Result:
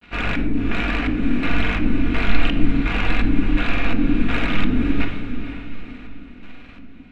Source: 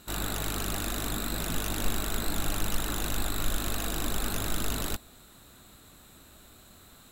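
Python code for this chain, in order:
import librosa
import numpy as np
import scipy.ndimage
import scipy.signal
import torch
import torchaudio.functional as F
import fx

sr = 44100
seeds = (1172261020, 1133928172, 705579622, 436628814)

y = fx.dead_time(x, sr, dead_ms=0.085)
y = fx.granulator(y, sr, seeds[0], grain_ms=100.0, per_s=20.0, spray_ms=100.0, spread_st=0)
y = fx.filter_lfo_lowpass(y, sr, shape='square', hz=1.4, low_hz=290.0, high_hz=2400.0, q=4.2)
y = fx.echo_diffused(y, sr, ms=506, feedback_pct=40, wet_db=-9)
y = fx.room_shoebox(y, sr, seeds[1], volume_m3=2500.0, walls='furnished', distance_m=1.8)
y = F.gain(torch.from_numpy(y), 8.0).numpy()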